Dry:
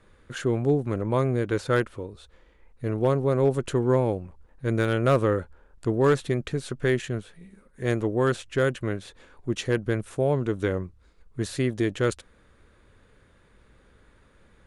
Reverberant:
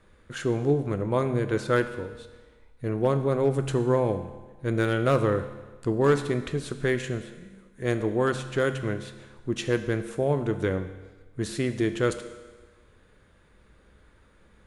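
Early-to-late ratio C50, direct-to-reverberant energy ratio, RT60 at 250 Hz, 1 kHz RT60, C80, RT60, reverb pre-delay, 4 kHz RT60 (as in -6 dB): 11.0 dB, 8.5 dB, 1.3 s, 1.3 s, 12.5 dB, 1.3 s, 6 ms, 1.3 s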